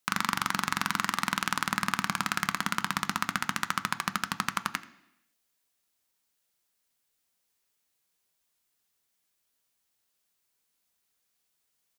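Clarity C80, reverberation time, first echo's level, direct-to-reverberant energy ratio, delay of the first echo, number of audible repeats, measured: 17.0 dB, 0.85 s, −21.0 dB, 10.5 dB, 83 ms, 1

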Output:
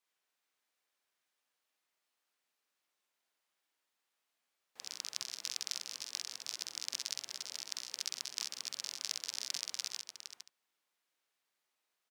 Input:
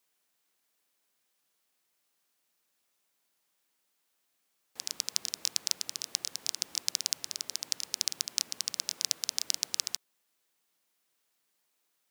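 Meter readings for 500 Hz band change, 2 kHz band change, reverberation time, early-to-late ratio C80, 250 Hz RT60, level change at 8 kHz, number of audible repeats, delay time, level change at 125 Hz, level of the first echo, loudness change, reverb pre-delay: −5.5 dB, −3.5 dB, no reverb audible, no reverb audible, no reverb audible, −8.0 dB, 4, 47 ms, can't be measured, −4.0 dB, −7.5 dB, no reverb audible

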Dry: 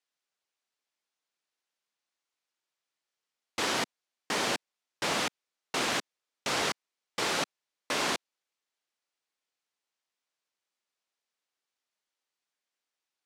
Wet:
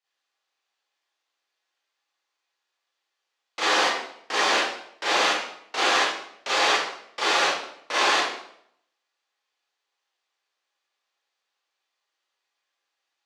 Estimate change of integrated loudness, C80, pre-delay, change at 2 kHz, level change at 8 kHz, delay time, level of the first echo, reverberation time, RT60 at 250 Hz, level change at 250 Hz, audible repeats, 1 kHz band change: +8.5 dB, 3.0 dB, 29 ms, +10.0 dB, +4.0 dB, no echo audible, no echo audible, 0.70 s, 0.75 s, +1.5 dB, no echo audible, +10.5 dB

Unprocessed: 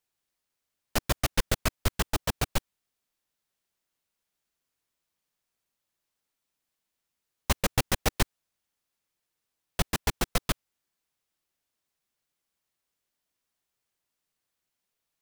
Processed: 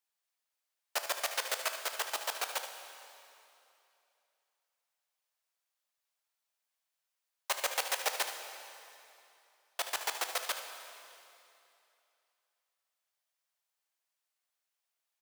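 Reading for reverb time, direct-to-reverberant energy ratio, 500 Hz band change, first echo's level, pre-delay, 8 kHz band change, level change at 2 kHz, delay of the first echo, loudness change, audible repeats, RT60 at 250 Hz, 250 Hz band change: 2.8 s, 5.0 dB, −6.5 dB, −11.0 dB, 5 ms, −3.0 dB, −2.5 dB, 75 ms, −5.0 dB, 1, 2.8 s, −27.0 dB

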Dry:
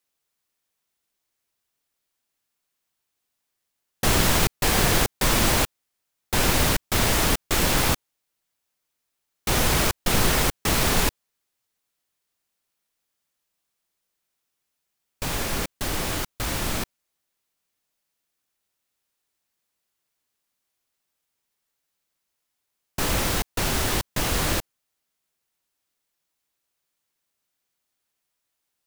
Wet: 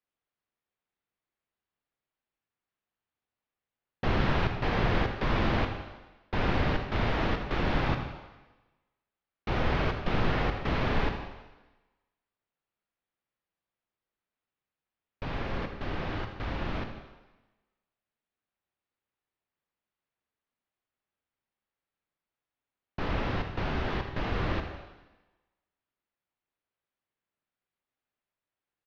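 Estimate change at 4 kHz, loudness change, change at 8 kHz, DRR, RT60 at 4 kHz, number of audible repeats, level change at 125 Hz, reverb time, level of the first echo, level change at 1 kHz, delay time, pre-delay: −13.5 dB, −8.5 dB, below −30 dB, 5.0 dB, 1.1 s, 2, −3.5 dB, 1.1 s, −12.0 dB, −5.0 dB, 81 ms, 33 ms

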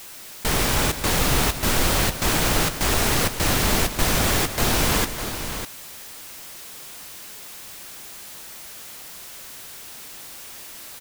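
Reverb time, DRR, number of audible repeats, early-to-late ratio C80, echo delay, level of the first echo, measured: no reverb audible, no reverb audible, 3, no reverb audible, 131 ms, −15.0 dB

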